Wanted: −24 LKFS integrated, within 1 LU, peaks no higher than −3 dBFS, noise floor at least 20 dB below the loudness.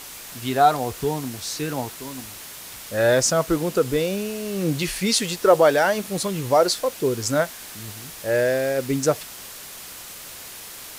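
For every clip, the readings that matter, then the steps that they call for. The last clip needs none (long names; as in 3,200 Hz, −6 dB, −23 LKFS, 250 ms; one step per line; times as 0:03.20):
background noise floor −39 dBFS; target noise floor −42 dBFS; integrated loudness −22.0 LKFS; sample peak −4.0 dBFS; target loudness −24.0 LKFS
→ broadband denoise 6 dB, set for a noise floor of −39 dBFS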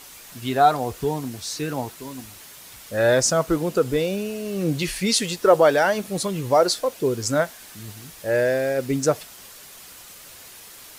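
background noise floor −44 dBFS; integrated loudness −22.0 LKFS; sample peak −4.0 dBFS; target loudness −24.0 LKFS
→ level −2 dB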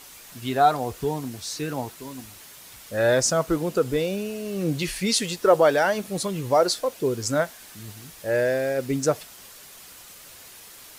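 integrated loudness −24.0 LKFS; sample peak −6.0 dBFS; background noise floor −46 dBFS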